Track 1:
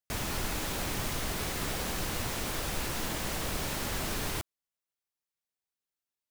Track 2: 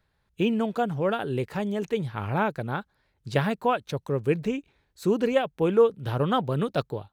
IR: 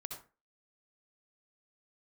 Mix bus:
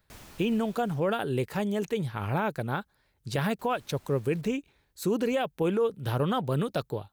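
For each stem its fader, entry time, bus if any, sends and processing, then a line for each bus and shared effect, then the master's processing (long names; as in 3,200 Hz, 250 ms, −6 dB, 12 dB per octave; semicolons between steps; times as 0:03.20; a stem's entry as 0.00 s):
−12.0 dB, 0.00 s, muted 0:01.00–0:03.59, send −18.5 dB, automatic ducking −18 dB, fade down 1.05 s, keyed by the second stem
−0.5 dB, 0.00 s, no send, high-shelf EQ 7,400 Hz +11 dB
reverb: on, RT60 0.30 s, pre-delay 58 ms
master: brickwall limiter −18.5 dBFS, peak gain reduction 9 dB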